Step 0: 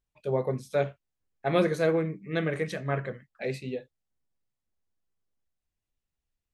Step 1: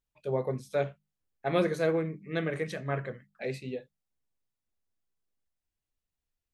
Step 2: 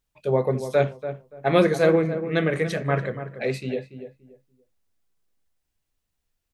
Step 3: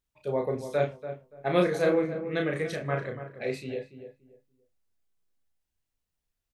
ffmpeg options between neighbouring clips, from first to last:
-af "bandreject=f=50:t=h:w=6,bandreject=f=100:t=h:w=6,bandreject=f=150:t=h:w=6,bandreject=f=200:t=h:w=6,volume=-2.5dB"
-filter_complex "[0:a]asplit=2[a][b];[b]adelay=287,lowpass=f=1.3k:p=1,volume=-10dB,asplit=2[c][d];[d]adelay=287,lowpass=f=1.3k:p=1,volume=0.24,asplit=2[e][f];[f]adelay=287,lowpass=f=1.3k:p=1,volume=0.24[g];[a][c][e][g]amix=inputs=4:normalize=0,volume=8.5dB"
-filter_complex "[0:a]asplit=2[a][b];[b]adelay=34,volume=-4.5dB[c];[a][c]amix=inputs=2:normalize=0,volume=-7dB"

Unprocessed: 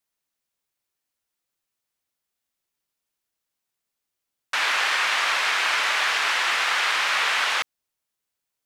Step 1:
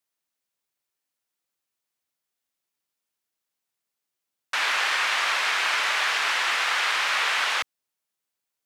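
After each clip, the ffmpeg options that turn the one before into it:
-af "highpass=f=140:p=1,volume=-1.5dB"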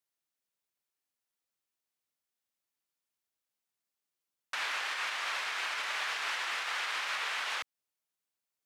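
-af "alimiter=limit=-20dB:level=0:latency=1:release=188,volume=-5.5dB"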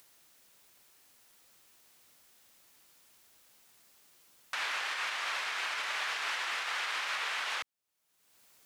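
-af "acompressor=mode=upward:threshold=-42dB:ratio=2.5"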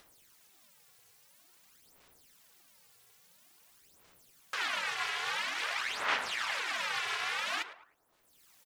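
-filter_complex "[0:a]asplit=2[a][b];[b]adelay=107,lowpass=f=1.4k:p=1,volume=-8.5dB,asplit=2[c][d];[d]adelay=107,lowpass=f=1.4k:p=1,volume=0.49,asplit=2[e][f];[f]adelay=107,lowpass=f=1.4k:p=1,volume=0.49,asplit=2[g][h];[h]adelay=107,lowpass=f=1.4k:p=1,volume=0.49,asplit=2[i][j];[j]adelay=107,lowpass=f=1.4k:p=1,volume=0.49,asplit=2[k][l];[l]adelay=107,lowpass=f=1.4k:p=1,volume=0.49[m];[a][c][e][g][i][k][m]amix=inputs=7:normalize=0,aphaser=in_gain=1:out_gain=1:delay=3.3:decay=0.72:speed=0.49:type=sinusoidal,aeval=exprs='val(0)*sin(2*PI*190*n/s)':c=same"

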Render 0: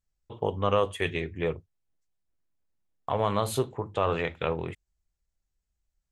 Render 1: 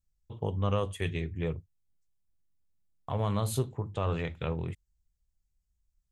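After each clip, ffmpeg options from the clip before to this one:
-af "bass=f=250:g=12,treble=f=4k:g=7,volume=-8dB"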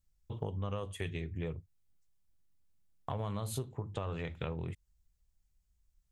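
-af "acompressor=threshold=-38dB:ratio=5,volume=3dB"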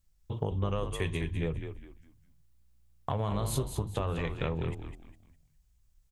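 -filter_complex "[0:a]asplit=5[a][b][c][d][e];[b]adelay=204,afreqshift=-60,volume=-7.5dB[f];[c]adelay=408,afreqshift=-120,volume=-17.7dB[g];[d]adelay=612,afreqshift=-180,volume=-27.8dB[h];[e]adelay=816,afreqshift=-240,volume=-38dB[i];[a][f][g][h][i]amix=inputs=5:normalize=0,volume=5.5dB"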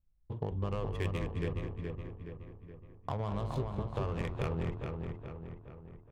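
-filter_complex "[0:a]adynamicsmooth=sensitivity=7.5:basefreq=1.1k,asplit=2[a][b];[b]adelay=421,lowpass=f=3.3k:p=1,volume=-4.5dB,asplit=2[c][d];[d]adelay=421,lowpass=f=3.3k:p=1,volume=0.52,asplit=2[e][f];[f]adelay=421,lowpass=f=3.3k:p=1,volume=0.52,asplit=2[g][h];[h]adelay=421,lowpass=f=3.3k:p=1,volume=0.52,asplit=2[i][j];[j]adelay=421,lowpass=f=3.3k:p=1,volume=0.52,asplit=2[k][l];[l]adelay=421,lowpass=f=3.3k:p=1,volume=0.52,asplit=2[m][n];[n]adelay=421,lowpass=f=3.3k:p=1,volume=0.52[o];[a][c][e][g][i][k][m][o]amix=inputs=8:normalize=0,volume=-4dB"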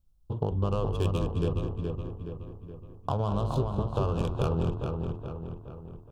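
-af "asuperstop=centerf=2000:order=4:qfactor=1.5,volume=7dB"

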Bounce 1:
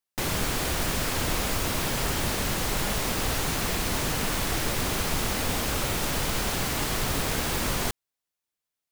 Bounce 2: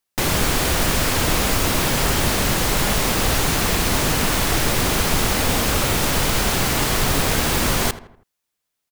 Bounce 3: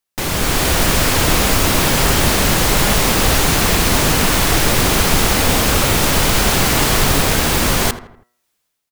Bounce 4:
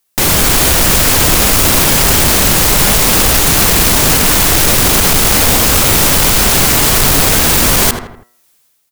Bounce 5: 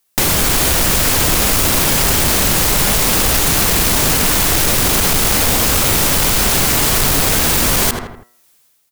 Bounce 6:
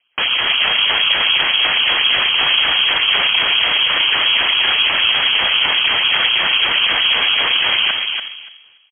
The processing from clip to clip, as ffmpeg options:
-filter_complex "[0:a]asplit=2[a][b];[b]adelay=81,lowpass=f=2.2k:p=1,volume=-14dB,asplit=2[c][d];[d]adelay=81,lowpass=f=2.2k:p=1,volume=0.47,asplit=2[e][f];[f]adelay=81,lowpass=f=2.2k:p=1,volume=0.47,asplit=2[g][h];[h]adelay=81,lowpass=f=2.2k:p=1,volume=0.47[i];[a][c][e][g][i]amix=inputs=5:normalize=0,volume=8dB"
-af "bandreject=f=121.1:t=h:w=4,bandreject=f=242.2:t=h:w=4,bandreject=f=363.3:t=h:w=4,bandreject=f=484.4:t=h:w=4,bandreject=f=605.5:t=h:w=4,bandreject=f=726.6:t=h:w=4,bandreject=f=847.7:t=h:w=4,bandreject=f=968.8:t=h:w=4,bandreject=f=1.0899k:t=h:w=4,bandreject=f=1.211k:t=h:w=4,bandreject=f=1.3321k:t=h:w=4,bandreject=f=1.4532k:t=h:w=4,bandreject=f=1.5743k:t=h:w=4,bandreject=f=1.6954k:t=h:w=4,bandreject=f=1.8165k:t=h:w=4,bandreject=f=1.9376k:t=h:w=4,bandreject=f=2.0587k:t=h:w=4,dynaudnorm=f=100:g=9:m=14dB,volume=-1dB"
-af "aeval=exprs='0.841*sin(PI/2*2*val(0)/0.841)':c=same,highshelf=f=6.1k:g=8,alimiter=level_in=1dB:limit=-1dB:release=50:level=0:latency=1,volume=-1dB"
-af "acompressor=threshold=-11dB:ratio=6"
-filter_complex "[0:a]acrusher=samples=19:mix=1:aa=0.000001:lfo=1:lforange=30.4:lforate=4,asplit=2[a][b];[b]adelay=289,lowpass=f=1.7k:p=1,volume=-4dB,asplit=2[c][d];[d]adelay=289,lowpass=f=1.7k:p=1,volume=0.19,asplit=2[e][f];[f]adelay=289,lowpass=f=1.7k:p=1,volume=0.19[g];[c][e][g]amix=inputs=3:normalize=0[h];[a][h]amix=inputs=2:normalize=0,lowpass=f=2.8k:t=q:w=0.5098,lowpass=f=2.8k:t=q:w=0.6013,lowpass=f=2.8k:t=q:w=0.9,lowpass=f=2.8k:t=q:w=2.563,afreqshift=-3300,volume=-2.5dB"

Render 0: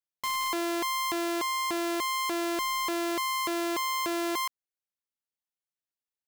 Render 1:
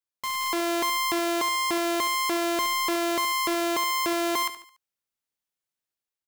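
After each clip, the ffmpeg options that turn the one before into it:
-af "dynaudnorm=f=130:g=7:m=4.5dB,aecho=1:1:72|144|216|288:0.251|0.105|0.0443|0.0186"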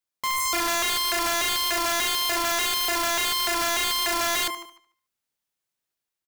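-filter_complex "[0:a]asplit=2[a][b];[b]adelay=150,lowpass=f=4.6k:p=1,volume=-15.5dB,asplit=2[c][d];[d]adelay=150,lowpass=f=4.6k:p=1,volume=0.23[e];[a][c][e]amix=inputs=3:normalize=0,aeval=exprs='(mod(16.8*val(0)+1,2)-1)/16.8':c=same,volume=4dB"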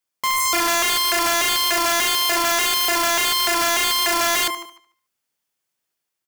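-af "lowshelf=f=89:g=-7,bandreject=f=3.9k:w=16,volume=5.5dB"

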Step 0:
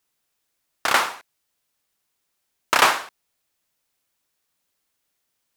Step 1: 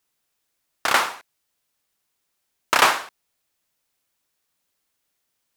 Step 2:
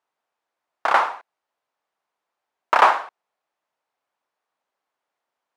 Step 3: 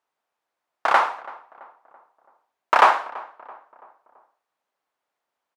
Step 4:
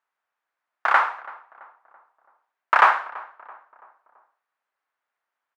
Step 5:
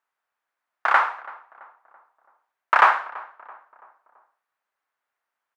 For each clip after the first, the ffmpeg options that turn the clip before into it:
-af anull
-af "bandpass=f=830:t=q:w=1.4:csg=0,volume=6dB"
-filter_complex "[0:a]asplit=2[a][b];[b]adelay=333,lowpass=f=1.5k:p=1,volume=-19dB,asplit=2[c][d];[d]adelay=333,lowpass=f=1.5k:p=1,volume=0.52,asplit=2[e][f];[f]adelay=333,lowpass=f=1.5k:p=1,volume=0.52,asplit=2[g][h];[h]adelay=333,lowpass=f=1.5k:p=1,volume=0.52[i];[a][c][e][g][i]amix=inputs=5:normalize=0"
-af "equalizer=f=1.6k:w=0.74:g=13,volume=-10dB"
-af "bandreject=f=50:t=h:w=6,bandreject=f=100:t=h:w=6,bandreject=f=150:t=h:w=6"

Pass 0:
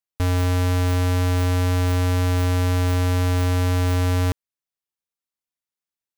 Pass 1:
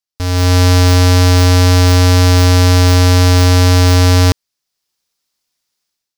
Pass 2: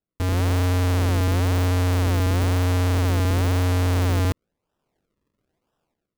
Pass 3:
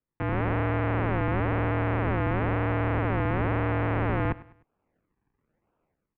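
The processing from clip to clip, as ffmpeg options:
-af "equalizer=f=5k:t=o:w=0.86:g=10,dynaudnorm=f=110:g=7:m=15.5dB"
-af "acrusher=samples=40:mix=1:aa=0.000001:lfo=1:lforange=40:lforate=1,asoftclip=type=tanh:threshold=-16.5dB,volume=-3dB"
-af "aecho=1:1:101|202|303:0.112|0.0426|0.0162,highpass=f=160:t=q:w=0.5412,highpass=f=160:t=q:w=1.307,lowpass=f=2.5k:t=q:w=0.5176,lowpass=f=2.5k:t=q:w=0.7071,lowpass=f=2.5k:t=q:w=1.932,afreqshift=-160,volume=1.5dB"

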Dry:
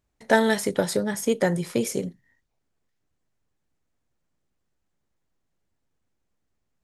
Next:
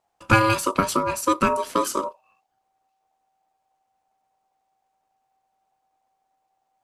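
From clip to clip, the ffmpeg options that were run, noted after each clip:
-af "aeval=exprs='val(0)*sin(2*PI*770*n/s)':c=same,volume=5dB"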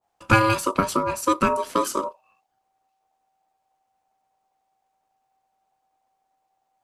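-af "adynamicequalizer=threshold=0.0316:dfrequency=1600:dqfactor=0.7:tfrequency=1600:tqfactor=0.7:attack=5:release=100:ratio=0.375:range=2:mode=cutabove:tftype=highshelf"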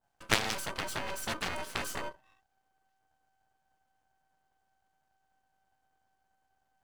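-af "aeval=exprs='max(val(0),0)':c=same,aeval=exprs='0.794*(cos(1*acos(clip(val(0)/0.794,-1,1)))-cos(1*PI/2))+0.126*(cos(4*acos(clip(val(0)/0.794,-1,1)))-cos(4*PI/2))+0.126*(cos(8*acos(clip(val(0)/0.794,-1,1)))-cos(8*PI/2))':c=same"

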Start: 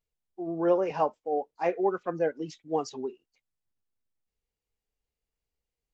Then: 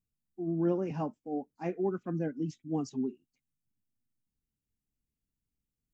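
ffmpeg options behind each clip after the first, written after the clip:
-af "equalizer=f=125:t=o:w=1:g=8,equalizer=f=250:t=o:w=1:g=12,equalizer=f=500:t=o:w=1:g=-12,equalizer=f=1k:t=o:w=1:g=-8,equalizer=f=2k:t=o:w=1:g=-5,equalizer=f=4k:t=o:w=1:g=-9,volume=-1.5dB"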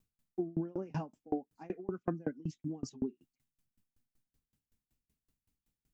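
-af "acompressor=threshold=-39dB:ratio=6,aeval=exprs='val(0)*pow(10,-30*if(lt(mod(5.3*n/s,1),2*abs(5.3)/1000),1-mod(5.3*n/s,1)/(2*abs(5.3)/1000),(mod(5.3*n/s,1)-2*abs(5.3)/1000)/(1-2*abs(5.3)/1000))/20)':c=same,volume=12.5dB"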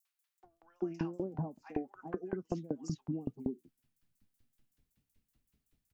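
-filter_complex "[0:a]acompressor=threshold=-38dB:ratio=4,acrossover=split=950|5700[a][b][c];[b]adelay=50[d];[a]adelay=440[e];[e][d][c]amix=inputs=3:normalize=0,volume=5.5dB"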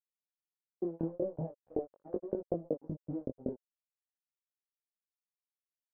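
-af "aeval=exprs='sgn(val(0))*max(abs(val(0))-0.00473,0)':c=same,lowpass=f=550:t=q:w=4.9,flanger=delay=18.5:depth=6.2:speed=0.4,volume=1dB"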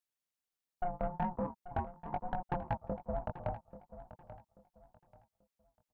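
-af "aeval=exprs='val(0)*sin(2*PI*360*n/s)':c=same,asoftclip=type=tanh:threshold=-31.5dB,aecho=1:1:836|1672|2508:0.2|0.0559|0.0156,volume=6dB"

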